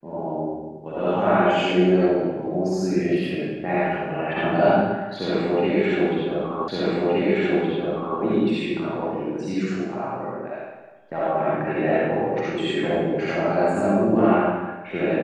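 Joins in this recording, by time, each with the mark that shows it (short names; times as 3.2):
6.68 repeat of the last 1.52 s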